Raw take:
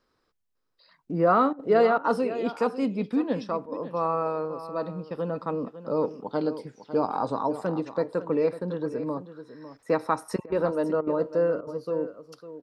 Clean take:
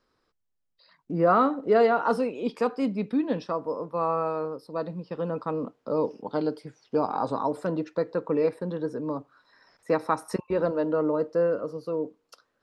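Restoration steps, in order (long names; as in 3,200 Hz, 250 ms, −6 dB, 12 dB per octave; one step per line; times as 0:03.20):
repair the gap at 0:01.53/0:01.98/0:03.66/0:10.46/0:11.01/0:11.61, 59 ms
echo removal 552 ms −13 dB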